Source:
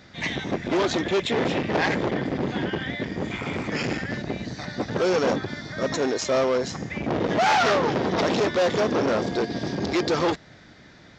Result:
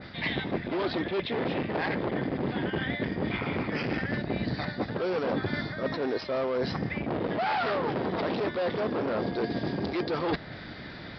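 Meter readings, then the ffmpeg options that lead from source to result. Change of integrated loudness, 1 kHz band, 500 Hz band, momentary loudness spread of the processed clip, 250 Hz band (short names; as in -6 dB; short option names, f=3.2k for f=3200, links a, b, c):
-5.5 dB, -6.5 dB, -6.0 dB, 3 LU, -4.0 dB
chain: -af "areverse,acompressor=threshold=-34dB:ratio=12,areverse,aresample=11025,aresample=44100,adynamicequalizer=threshold=0.00316:dfrequency=2500:dqfactor=0.7:tfrequency=2500:tqfactor=0.7:attack=5:release=100:ratio=0.375:range=2:mode=cutabove:tftype=highshelf,volume=8dB"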